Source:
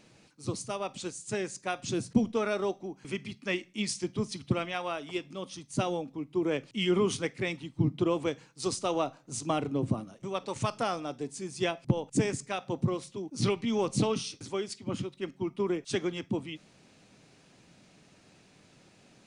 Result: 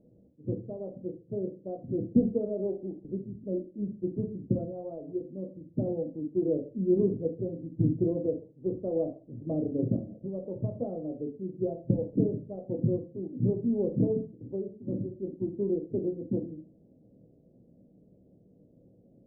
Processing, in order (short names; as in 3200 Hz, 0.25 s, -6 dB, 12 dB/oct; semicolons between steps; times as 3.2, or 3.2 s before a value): elliptic low-pass 560 Hz, stop band 70 dB; on a send: reverb RT60 0.35 s, pre-delay 4 ms, DRR 2 dB